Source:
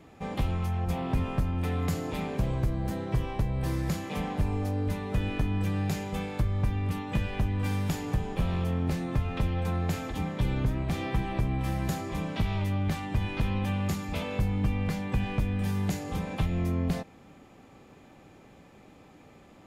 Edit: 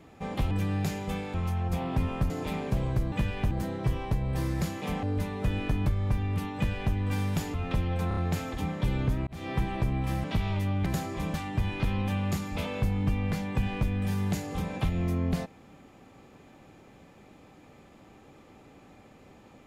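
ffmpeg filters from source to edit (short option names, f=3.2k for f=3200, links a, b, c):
-filter_complex "[0:a]asplit=16[a][b][c][d][e][f][g][h][i][j][k][l][m][n][o][p];[a]atrim=end=0.512[q];[b]atrim=start=5.558:end=6.392[r];[c]atrim=start=0.508:end=1.472[s];[d]atrim=start=1.968:end=2.792[t];[e]atrim=start=7.078:end=7.472[u];[f]atrim=start=2.788:end=4.312[v];[g]atrim=start=4.728:end=5.562[w];[h]atrim=start=6.388:end=8.072[x];[i]atrim=start=9.198:end=9.772[y];[j]atrim=start=9.738:end=9.772[z];[k]atrim=start=9.738:end=9.772[aa];[l]atrim=start=9.738:end=10.84,asetpts=PTS-STARTPTS,afade=t=out:st=1.098:d=0.004:c=hsin[ab];[m]atrim=start=10.84:end=11.812,asetpts=PTS-STARTPTS,afade=t=in:d=0.28[ac];[n]atrim=start=12.288:end=12.912[ad];[o]atrim=start=11.808:end=12.292[ae];[p]atrim=start=12.908[af];[q][r]acrossfade=d=0.004:c1=hsin:c2=hsin[ag];[ag][s]acrossfade=d=0.004:c1=hsin:c2=hsin[ah];[ah][t]acrossfade=d=0.004:c1=hsin:c2=hsin[ai];[ai][u]acrossfade=d=0.004:c1=hsin:c2=hsin[aj];[aj][v]acrossfade=d=0.004:c1=hsin:c2=hsin[ak];[ak][w]acrossfade=d=0.004:c1=hsin:c2=hsin[al];[al][x]acrossfade=d=0.004:c1=hsin:c2=hsin[am];[am][y]acrossfade=d=0.004:c1=hsin:c2=hsin[an];[an][z]acrossfade=d=0.004:c1=hsin:c2=hsin[ao];[ao][aa]acrossfade=d=0.004:c1=hsin:c2=hsin[ap];[ab][ac]concat=n=2:v=0:a=1[aq];[ap][aq]acrossfade=d=0.004:c1=hsin:c2=hsin[ar];[ar][ad]acrossfade=d=0.004:c1=hsin:c2=hsin[as];[as][ae]acrossfade=d=0.004:c1=hsin:c2=hsin[at];[at][af]acrossfade=d=0.004:c1=hsin:c2=hsin"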